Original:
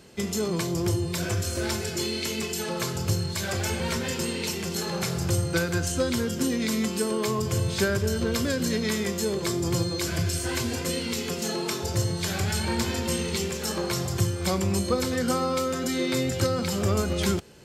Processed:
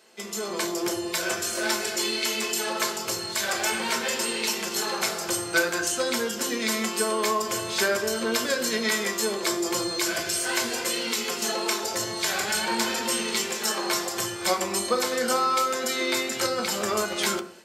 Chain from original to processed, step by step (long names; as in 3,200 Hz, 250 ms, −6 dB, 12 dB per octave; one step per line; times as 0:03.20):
high-pass filter 530 Hz 12 dB per octave
on a send at −3.5 dB: convolution reverb RT60 0.45 s, pre-delay 5 ms
on the sum: automatic gain control gain up to 7 dB
level −3 dB